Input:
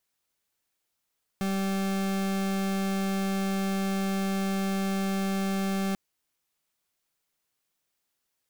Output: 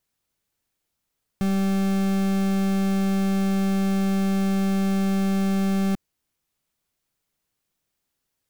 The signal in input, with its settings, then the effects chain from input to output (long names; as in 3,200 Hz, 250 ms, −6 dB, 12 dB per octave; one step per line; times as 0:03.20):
pulse wave 194 Hz, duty 40% −28 dBFS 4.54 s
low-shelf EQ 290 Hz +10 dB